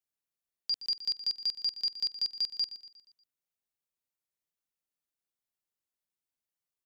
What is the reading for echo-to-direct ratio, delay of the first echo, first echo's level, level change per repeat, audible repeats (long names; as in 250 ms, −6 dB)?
−13.0 dB, 119 ms, −14.0 dB, −6.5 dB, 4